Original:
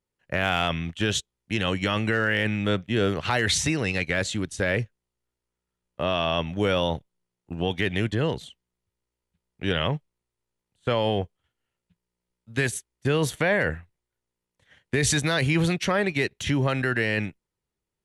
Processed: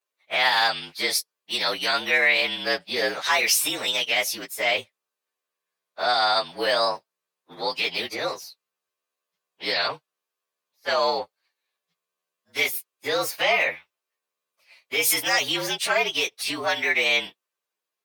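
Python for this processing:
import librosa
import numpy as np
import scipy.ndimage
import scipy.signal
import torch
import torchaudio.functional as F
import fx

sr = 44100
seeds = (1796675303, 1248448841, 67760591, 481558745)

y = fx.partial_stretch(x, sr, pct=113)
y = scipy.signal.sosfilt(scipy.signal.butter(2, 740.0, 'highpass', fs=sr, output='sos'), y)
y = y * 10.0 ** (8.5 / 20.0)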